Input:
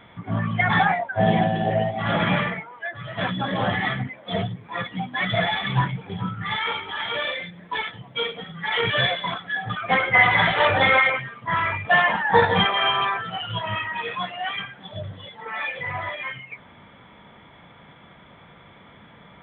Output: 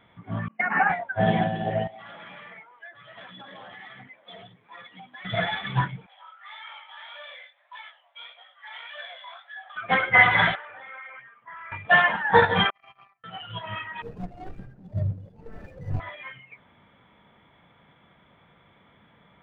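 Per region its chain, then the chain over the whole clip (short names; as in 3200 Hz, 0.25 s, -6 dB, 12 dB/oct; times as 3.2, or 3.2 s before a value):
0.48–0.9 brick-wall FIR band-pass 180–3000 Hz + expander -20 dBFS
1.87–5.25 HPF 650 Hz 6 dB/oct + compressor 12:1, threshold -30 dBFS
6.06–9.76 steep high-pass 560 Hz 96 dB/oct + compressor 2.5:1, threshold -27 dBFS + chorus 1.7 Hz, delay 17 ms, depth 7.5 ms
10.55–11.72 compressor 10:1, threshold -23 dBFS + band-pass 1700 Hz, Q 0.97 + air absorption 400 m
12.7–13.24 fixed phaser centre 2300 Hz, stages 8 + gate -22 dBFS, range -37 dB + Butterworth band-stop 940 Hz, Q 4.8
14.02–16 median filter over 41 samples + tilt -4 dB/oct
whole clip: dynamic EQ 1500 Hz, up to +6 dB, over -39 dBFS, Q 4.9; upward expander 1.5:1, over -31 dBFS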